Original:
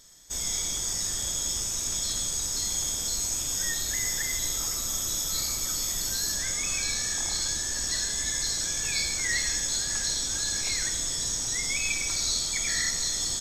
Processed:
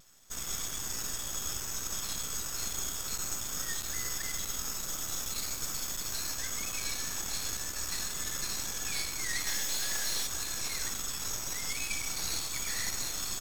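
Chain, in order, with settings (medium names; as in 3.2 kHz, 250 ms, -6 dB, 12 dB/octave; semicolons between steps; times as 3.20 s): vibrato 0.41 Hz 10 cents; 9.47–10.27 s: overdrive pedal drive 22 dB, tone 3.6 kHz, clips at -15 dBFS; half-wave rectifier; trim -2.5 dB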